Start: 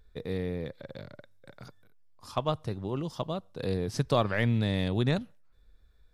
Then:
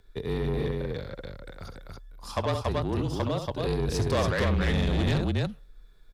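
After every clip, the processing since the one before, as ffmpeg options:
-af "aecho=1:1:67.06|282.8:0.355|0.708,asoftclip=type=tanh:threshold=-26.5dB,afreqshift=-35,volume=5.5dB"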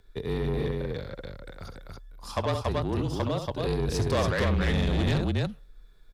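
-af anull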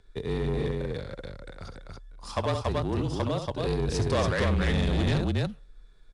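-ar 22050 -c:a adpcm_ima_wav

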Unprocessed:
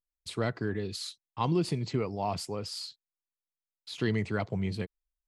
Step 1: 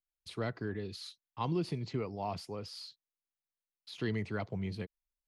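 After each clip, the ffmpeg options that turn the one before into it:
-filter_complex "[0:a]equalizer=f=7.7k:w=4.5:g=-9,acrossover=split=360|4800[a][b][c];[c]alimiter=level_in=16.5dB:limit=-24dB:level=0:latency=1,volume=-16.5dB[d];[a][b][d]amix=inputs=3:normalize=0,volume=-5.5dB"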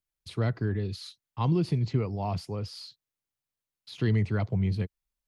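-af "equalizer=f=100:t=o:w=1.9:g=10.5,volume=3dB"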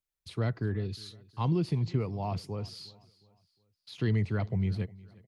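-af "aecho=1:1:360|720|1080:0.0794|0.0318|0.0127,volume=-2.5dB"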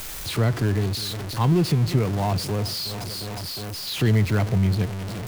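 -af "aeval=exprs='val(0)+0.5*0.0224*sgn(val(0))':c=same,volume=7dB"

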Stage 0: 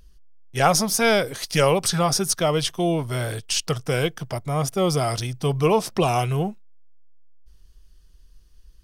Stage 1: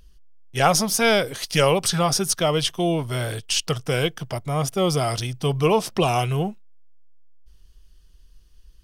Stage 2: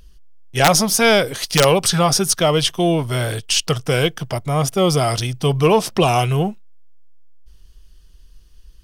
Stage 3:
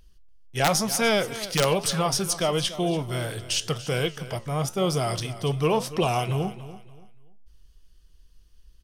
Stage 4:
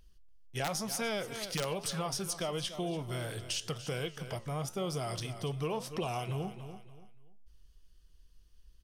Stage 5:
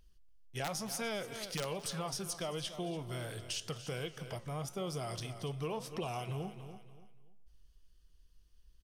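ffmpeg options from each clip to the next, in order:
-af "equalizer=f=3k:t=o:w=0.47:g=4"
-af "acontrast=31,aeval=exprs='(mod(1.41*val(0)+1,2)-1)/1.41':c=same"
-af "flanger=delay=8:depth=8.7:regen=-79:speed=1:shape=triangular,aecho=1:1:287|574|861:0.178|0.0533|0.016,volume=-4dB"
-af "acompressor=threshold=-29dB:ratio=2.5,volume=-5.5dB"
-af "aecho=1:1:219|438|657:0.1|0.033|0.0109,volume=-3.5dB"

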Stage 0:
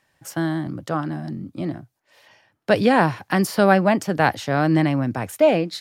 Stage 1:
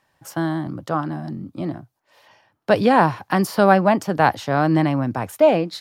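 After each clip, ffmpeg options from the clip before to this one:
-af "equalizer=f=1k:t=o:w=1:g=5,equalizer=f=2k:t=o:w=1:g=-3,equalizer=f=8k:t=o:w=1:g=-3"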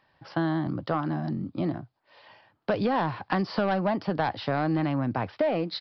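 -af "aresample=11025,asoftclip=type=tanh:threshold=-10.5dB,aresample=44100,acompressor=threshold=-23dB:ratio=6"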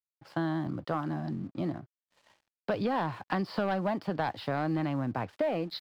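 -af "aeval=exprs='sgn(val(0))*max(abs(val(0))-0.00224,0)':c=same,volume=-4dB"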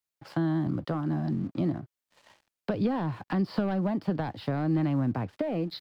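-filter_complex "[0:a]acrossover=split=370[a][b];[b]acompressor=threshold=-49dB:ratio=2[c];[a][c]amix=inputs=2:normalize=0,volume=6dB"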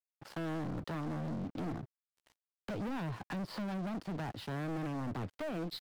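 -af "aeval=exprs='sgn(val(0))*max(abs(val(0))-0.00282,0)':c=same,aeval=exprs='(tanh(79.4*val(0)+0.2)-tanh(0.2))/79.4':c=same,volume=2dB"

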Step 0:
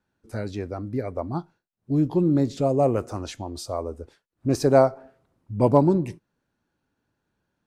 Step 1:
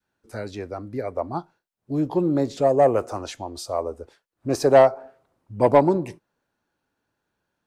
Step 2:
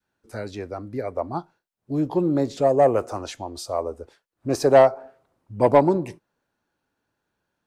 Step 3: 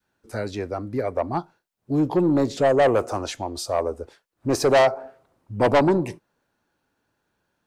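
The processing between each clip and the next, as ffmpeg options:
-filter_complex "[0:a]adynamicequalizer=threshold=0.0316:dfrequency=700:dqfactor=0.78:tfrequency=700:tqfactor=0.78:attack=5:release=100:ratio=0.375:range=3:mode=boostabove:tftype=bell,acrossover=split=380[a][b];[b]acontrast=76[c];[a][c]amix=inputs=2:normalize=0,volume=-5.5dB"
-af anull
-af "asoftclip=type=tanh:threshold=-16.5dB,volume=4dB"

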